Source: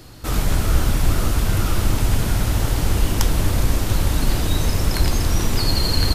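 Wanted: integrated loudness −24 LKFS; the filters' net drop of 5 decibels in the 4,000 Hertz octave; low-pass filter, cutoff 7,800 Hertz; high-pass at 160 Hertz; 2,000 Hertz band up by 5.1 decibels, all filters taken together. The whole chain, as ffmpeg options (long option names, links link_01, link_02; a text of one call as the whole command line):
ffmpeg -i in.wav -af "highpass=160,lowpass=7800,equalizer=frequency=2000:width_type=o:gain=8.5,equalizer=frequency=4000:width_type=o:gain=-8,volume=1.5dB" out.wav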